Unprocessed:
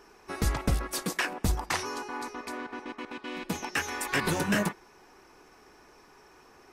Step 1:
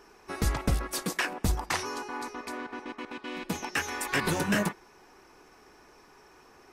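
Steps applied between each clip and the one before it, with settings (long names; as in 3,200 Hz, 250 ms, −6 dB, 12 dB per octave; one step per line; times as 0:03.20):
no processing that can be heard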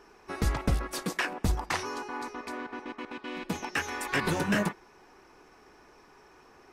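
high-shelf EQ 6,100 Hz −7 dB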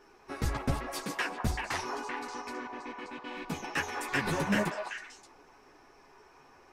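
multi-voice chorus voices 6, 1.1 Hz, delay 11 ms, depth 3.8 ms
echo through a band-pass that steps 193 ms, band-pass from 840 Hz, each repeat 1.4 octaves, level −1 dB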